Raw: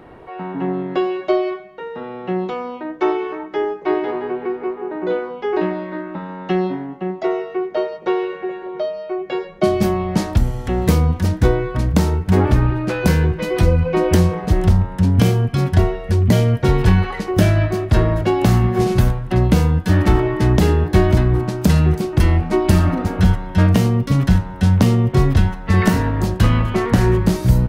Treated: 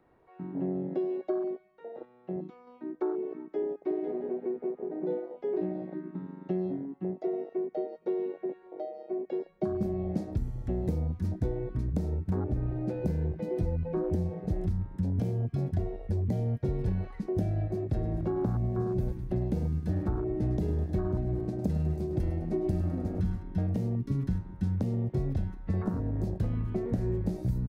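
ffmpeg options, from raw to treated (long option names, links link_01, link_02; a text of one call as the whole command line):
ffmpeg -i in.wav -filter_complex "[0:a]asplit=3[link_01][link_02][link_03];[link_01]afade=type=out:start_time=18.01:duration=0.02[link_04];[link_02]aecho=1:1:103|206|309|412|515:0.282|0.138|0.0677|0.0332|0.0162,afade=type=in:start_time=18.01:duration=0.02,afade=type=out:start_time=23.42:duration=0.02[link_05];[link_03]afade=type=in:start_time=23.42:duration=0.02[link_06];[link_04][link_05][link_06]amix=inputs=3:normalize=0,asplit=3[link_07][link_08][link_09];[link_07]atrim=end=2.052[link_10];[link_08]atrim=start=2.048:end=2.672,asetpts=PTS-STARTPTS,volume=-5dB[link_11];[link_09]atrim=start=2.668[link_12];[link_10][link_11]acrossfade=duration=0.004:curve1=hsin:curve2=hsin[link_13];[link_13][link_12]acrossfade=duration=0.004:curve1=hsin:curve2=hsin,afwtdn=0.141,equalizer=frequency=3000:width_type=o:width=0.27:gain=-6,acrossover=split=490|1300[link_14][link_15][link_16];[link_14]acompressor=threshold=-21dB:ratio=4[link_17];[link_15]acompressor=threshold=-40dB:ratio=4[link_18];[link_16]acompressor=threshold=-50dB:ratio=4[link_19];[link_17][link_18][link_19]amix=inputs=3:normalize=0,volume=-7dB" out.wav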